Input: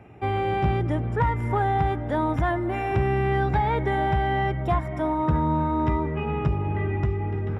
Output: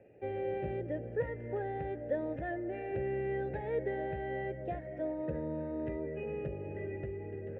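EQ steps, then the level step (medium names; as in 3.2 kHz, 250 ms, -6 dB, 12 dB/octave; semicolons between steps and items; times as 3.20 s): vowel filter e; tilt EQ -3.5 dB/octave; 0.0 dB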